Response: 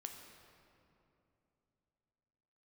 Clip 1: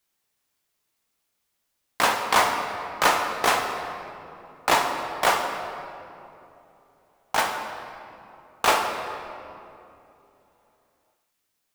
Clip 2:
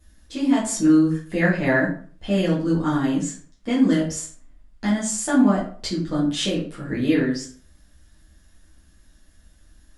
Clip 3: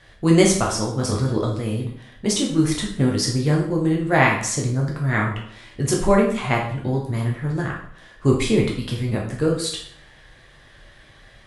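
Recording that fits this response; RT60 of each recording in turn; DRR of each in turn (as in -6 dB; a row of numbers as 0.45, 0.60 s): 1; 2.9, 0.45, 0.60 s; 3.5, -8.0, -2.0 dB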